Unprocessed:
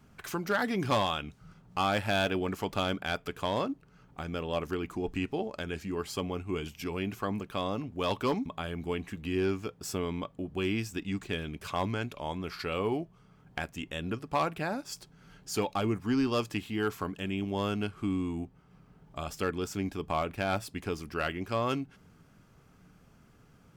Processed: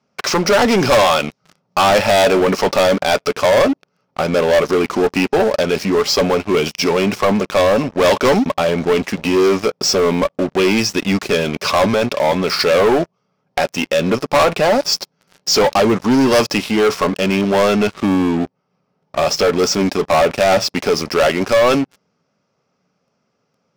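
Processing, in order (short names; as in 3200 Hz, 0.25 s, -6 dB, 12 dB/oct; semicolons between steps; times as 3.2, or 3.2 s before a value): speaker cabinet 230–5900 Hz, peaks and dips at 310 Hz -7 dB, 560 Hz +7 dB, 1600 Hz -6 dB, 3200 Hz -4 dB, 5400 Hz +9 dB; sample leveller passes 5; gain +6 dB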